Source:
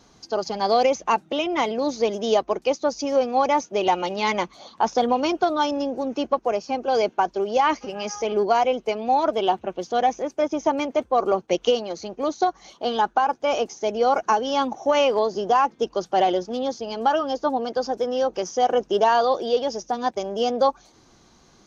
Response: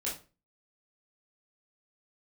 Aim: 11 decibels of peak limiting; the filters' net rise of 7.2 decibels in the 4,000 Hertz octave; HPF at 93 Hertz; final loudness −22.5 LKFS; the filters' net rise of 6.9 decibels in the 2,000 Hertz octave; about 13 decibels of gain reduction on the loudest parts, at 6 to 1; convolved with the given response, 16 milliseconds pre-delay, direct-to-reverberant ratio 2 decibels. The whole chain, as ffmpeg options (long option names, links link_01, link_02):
-filter_complex "[0:a]highpass=93,equalizer=frequency=2000:width_type=o:gain=7,equalizer=frequency=4000:width_type=o:gain=7,acompressor=threshold=-28dB:ratio=6,alimiter=level_in=2.5dB:limit=-24dB:level=0:latency=1,volume=-2.5dB,asplit=2[link_01][link_02];[1:a]atrim=start_sample=2205,adelay=16[link_03];[link_02][link_03]afir=irnorm=-1:irlink=0,volume=-5.5dB[link_04];[link_01][link_04]amix=inputs=2:normalize=0,volume=11dB"